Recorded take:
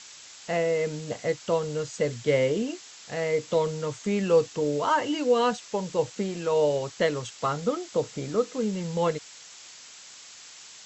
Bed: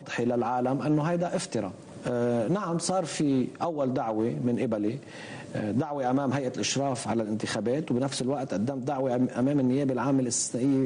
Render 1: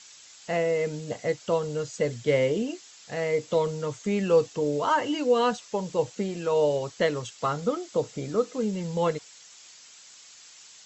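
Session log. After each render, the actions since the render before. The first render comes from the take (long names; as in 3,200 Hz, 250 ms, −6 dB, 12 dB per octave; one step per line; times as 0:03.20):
broadband denoise 6 dB, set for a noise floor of −47 dBFS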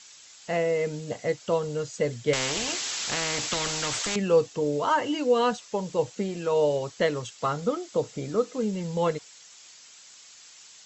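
0:02.33–0:04.16: every bin compressed towards the loudest bin 4 to 1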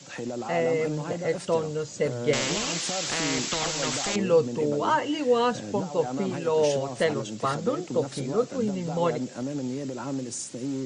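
mix in bed −6.5 dB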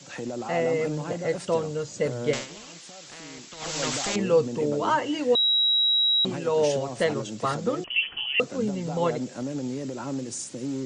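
0:02.27–0:03.77: duck −15 dB, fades 0.20 s
0:05.35–0:06.25: beep over 3,860 Hz −18.5 dBFS
0:07.84–0:08.40: voice inversion scrambler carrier 3,200 Hz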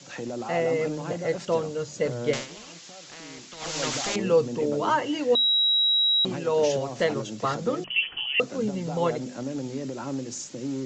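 Butterworth low-pass 7,400 Hz 72 dB per octave
mains-hum notches 50/100/150/200/250 Hz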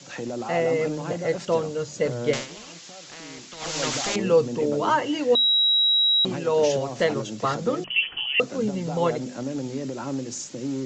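level +2 dB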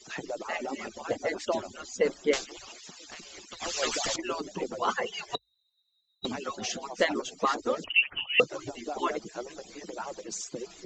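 harmonic-percussive split with one part muted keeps percussive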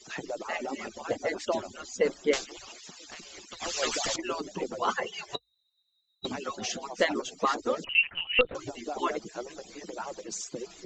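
0:05.00–0:06.31: notch comb filter 240 Hz
0:07.85–0:08.55: linear-prediction vocoder at 8 kHz pitch kept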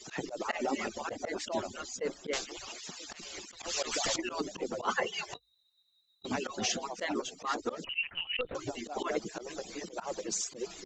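speech leveller within 3 dB 0.5 s
volume swells 105 ms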